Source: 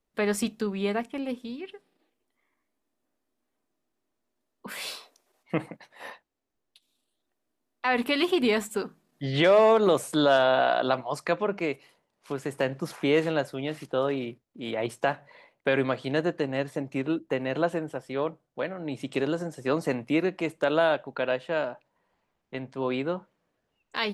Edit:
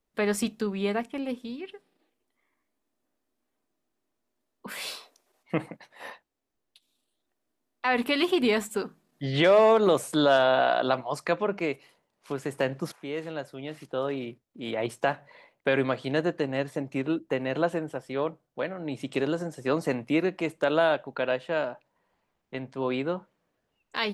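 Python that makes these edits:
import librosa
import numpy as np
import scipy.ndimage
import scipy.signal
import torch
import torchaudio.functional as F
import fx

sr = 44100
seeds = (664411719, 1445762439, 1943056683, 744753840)

y = fx.edit(x, sr, fx.fade_in_from(start_s=12.92, length_s=1.79, floor_db=-14.5), tone=tone)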